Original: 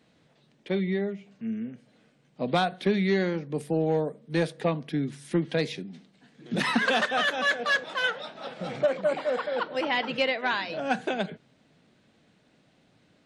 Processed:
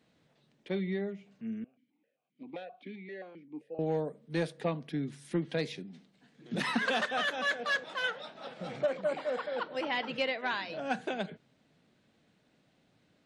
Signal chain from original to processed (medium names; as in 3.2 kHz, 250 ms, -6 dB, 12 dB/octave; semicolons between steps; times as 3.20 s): 1.64–3.79 s: stepped vowel filter 7.6 Hz; trim -6 dB